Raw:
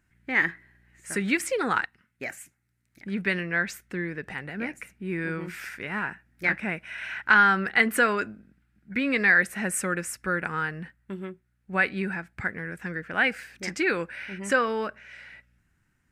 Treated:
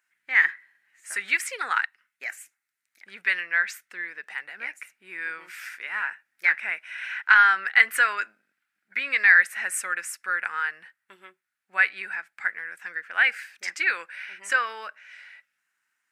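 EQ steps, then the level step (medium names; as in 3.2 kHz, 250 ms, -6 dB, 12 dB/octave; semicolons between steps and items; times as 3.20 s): high-pass 1.1 kHz 12 dB/octave; dynamic bell 1.9 kHz, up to +5 dB, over -37 dBFS, Q 1.3; 0.0 dB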